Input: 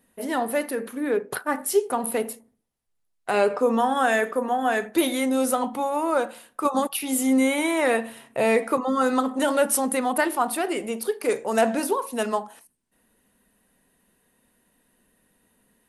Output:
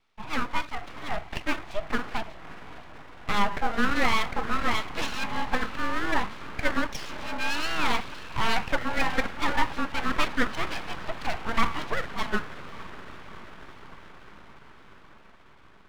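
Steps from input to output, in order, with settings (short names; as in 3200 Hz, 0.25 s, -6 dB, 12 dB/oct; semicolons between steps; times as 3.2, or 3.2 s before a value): diffused feedback echo 0.59 s, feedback 70%, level -15 dB; mistuned SSB -100 Hz 490–3500 Hz; full-wave rectifier; gain +1.5 dB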